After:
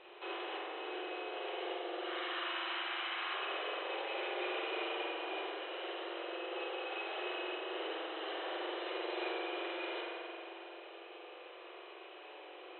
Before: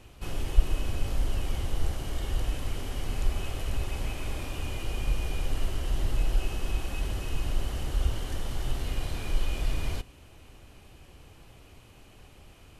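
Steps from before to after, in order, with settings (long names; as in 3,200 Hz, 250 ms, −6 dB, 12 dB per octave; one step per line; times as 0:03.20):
0:02.02–0:03.34: low shelf with overshoot 780 Hz −13.5 dB, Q 1.5
downward compressor 4 to 1, threshold −30 dBFS, peak gain reduction 16 dB
linear-phase brick-wall band-pass 330–4,100 Hz
high-frequency loss of the air 75 metres
delay with a low-pass on its return 226 ms, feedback 60%, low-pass 660 Hz, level −6 dB
spring reverb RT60 2.5 s, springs 44 ms, chirp 55 ms, DRR −4.5 dB
level +1.5 dB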